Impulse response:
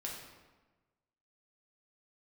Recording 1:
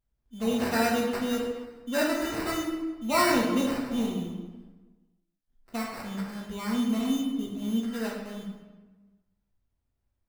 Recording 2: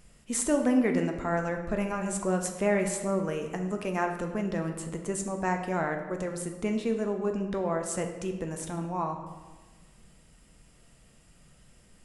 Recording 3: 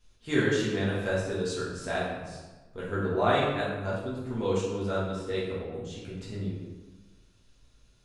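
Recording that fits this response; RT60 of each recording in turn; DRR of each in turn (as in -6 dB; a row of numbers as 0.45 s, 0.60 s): 1; 1.2 s, 1.2 s, 1.2 s; -3.0 dB, 4.0 dB, -8.0 dB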